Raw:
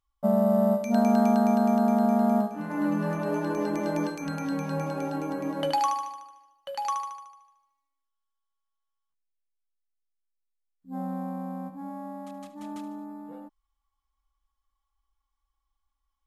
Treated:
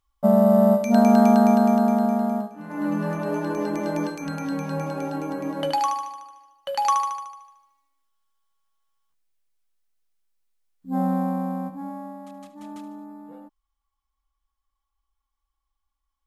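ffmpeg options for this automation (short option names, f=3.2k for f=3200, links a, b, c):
-af "volume=22dB,afade=t=out:st=1.45:d=1.11:silence=0.251189,afade=t=in:st=2.56:d=0.38:silence=0.398107,afade=t=in:st=6.09:d=1.09:silence=0.398107,afade=t=out:st=11.06:d=1.13:silence=0.298538"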